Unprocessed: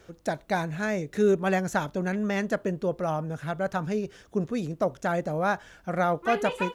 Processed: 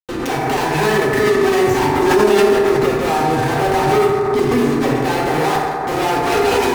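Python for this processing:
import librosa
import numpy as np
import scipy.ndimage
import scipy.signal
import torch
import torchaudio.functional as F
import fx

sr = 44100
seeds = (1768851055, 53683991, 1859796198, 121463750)

y = scipy.signal.sosfilt(scipy.signal.butter(4, 4900.0, 'lowpass', fs=sr, output='sos'), x)
y = fx.peak_eq(y, sr, hz=110.0, db=13.0, octaves=0.26)
y = fx.notch(y, sr, hz=2000.0, q=12.0)
y = fx.leveller(y, sr, passes=2)
y = fx.fixed_phaser(y, sr, hz=920.0, stages=8)
y = fx.fuzz(y, sr, gain_db=48.0, gate_db=-43.0)
y = fx.rev_fdn(y, sr, rt60_s=2.3, lf_ratio=0.75, hf_ratio=0.3, size_ms=23.0, drr_db=-6.5)
y = fx.pre_swell(y, sr, db_per_s=25.0)
y = y * librosa.db_to_amplitude(-10.0)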